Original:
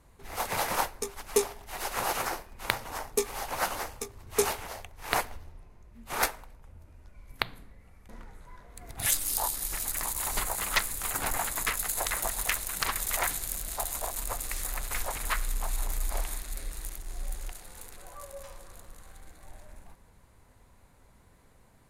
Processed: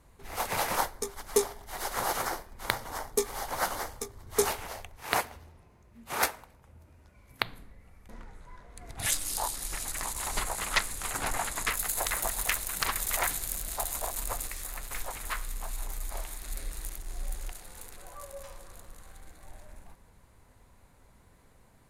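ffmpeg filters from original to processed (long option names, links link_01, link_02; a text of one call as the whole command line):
ffmpeg -i in.wav -filter_complex "[0:a]asettb=1/sr,asplit=3[link_01][link_02][link_03];[link_01]atrim=end=0.774[link_04];[link_02]atrim=start=0.77:end=4.47,asetpts=PTS-STARTPTS,afade=type=in:duration=0.004:curve=qsin,afade=type=out:start_time=3.696:duration=0.004:curve=qsin,equalizer=frequency=2600:width=5.9:gain=-10[link_05];[link_03]atrim=start=4.466[link_06];[link_04][link_05]acrossfade=duration=0.004:curve1=hsin:curve2=qsin[link_07];[link_07][link_06]acrossfade=duration=0.004:curve1=qsin:curve2=hsin,asettb=1/sr,asplit=3[link_08][link_09][link_10];[link_08]atrim=end=4.974[link_11];[link_09]atrim=start=4.97:end=7.44,asetpts=PTS-STARTPTS,afade=type=in:duration=0.004:curve=qsin,afade=type=out:start_time=2.466:duration=0.004:curve=qsin,highpass=73[link_12];[link_10]atrim=start=7.436[link_13];[link_11][link_12]acrossfade=duration=0.004:curve1=hsin:curve2=qsin[link_14];[link_14][link_13]acrossfade=duration=0.004:curve1=qsin:curve2=hsin,asettb=1/sr,asplit=3[link_15][link_16][link_17];[link_15]atrim=end=8.134[link_18];[link_16]atrim=start=8.13:end=11.7,asetpts=PTS-STARTPTS,afade=type=in:duration=0.004:curve=qsin,afade=type=out:start_time=3.566:duration=0.004:curve=qsin,lowpass=10000[link_19];[link_17]atrim=start=11.696[link_20];[link_18][link_19]acrossfade=duration=0.004:curve1=hsin:curve2=qsin[link_21];[link_21][link_20]acrossfade=duration=0.004:curve1=qsin:curve2=hsin,asplit=3[link_22][link_23][link_24];[link_22]afade=type=out:start_time=14.47:duration=0.02[link_25];[link_23]flanger=delay=5.8:depth=8.9:regen=65:speed=1.2:shape=triangular,afade=type=in:start_time=14.47:duration=0.02,afade=type=out:start_time=16.41:duration=0.02[link_26];[link_24]afade=type=in:start_time=16.41:duration=0.02[link_27];[link_25][link_26][link_27]amix=inputs=3:normalize=0" out.wav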